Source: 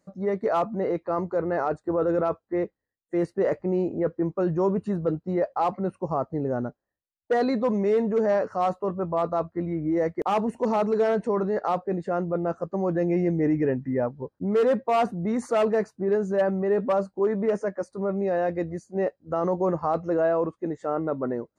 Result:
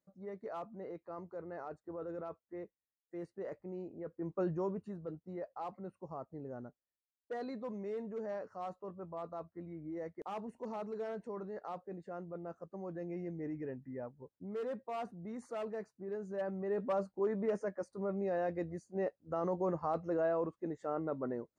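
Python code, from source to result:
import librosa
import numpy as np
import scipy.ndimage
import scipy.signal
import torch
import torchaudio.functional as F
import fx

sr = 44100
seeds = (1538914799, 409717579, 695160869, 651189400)

y = fx.gain(x, sr, db=fx.line((4.1, -19.0), (4.39, -9.0), (4.96, -18.0), (16.08, -18.0), (17.0, -10.0)))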